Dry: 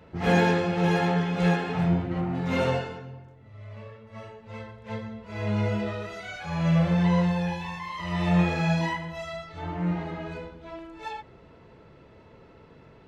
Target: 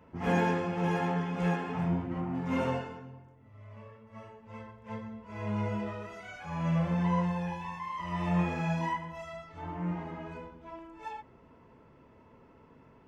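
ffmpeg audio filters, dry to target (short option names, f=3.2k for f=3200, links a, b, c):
-af "equalizer=f=250:t=o:w=0.33:g=8,equalizer=f=1k:t=o:w=0.33:g=8,equalizer=f=4k:t=o:w=0.33:g=-11,volume=-7.5dB"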